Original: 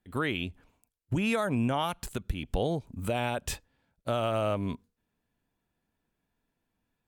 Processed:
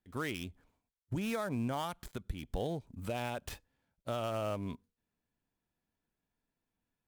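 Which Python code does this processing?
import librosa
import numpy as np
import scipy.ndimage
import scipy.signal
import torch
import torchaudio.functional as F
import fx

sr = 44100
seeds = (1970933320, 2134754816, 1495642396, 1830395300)

y = fx.dead_time(x, sr, dead_ms=0.064)
y = fx.peak_eq(y, sr, hz=2700.0, db=-7.0, octaves=0.21, at=(0.36, 2.63))
y = y * 10.0 ** (-7.0 / 20.0)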